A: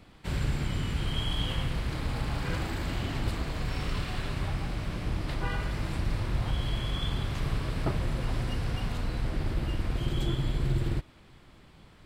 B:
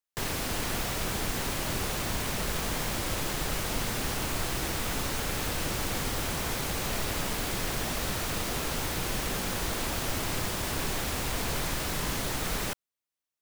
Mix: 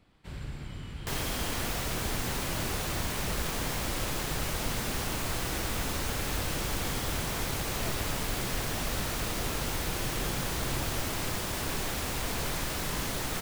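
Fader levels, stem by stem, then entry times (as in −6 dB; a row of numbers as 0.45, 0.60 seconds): −10.0, −1.5 decibels; 0.00, 0.90 seconds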